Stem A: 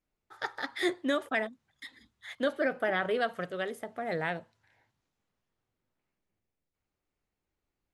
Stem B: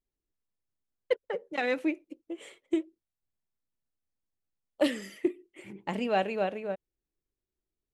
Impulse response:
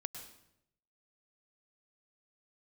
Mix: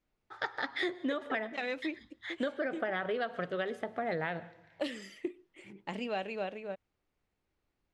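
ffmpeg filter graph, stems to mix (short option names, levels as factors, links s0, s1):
-filter_complex "[0:a]volume=1.26,asplit=2[s0][s1];[s1]volume=0.266[s2];[1:a]crystalizer=i=3:c=0,volume=0.473[s3];[2:a]atrim=start_sample=2205[s4];[s2][s4]afir=irnorm=-1:irlink=0[s5];[s0][s3][s5]amix=inputs=3:normalize=0,lowpass=4500,acompressor=threshold=0.0316:ratio=10"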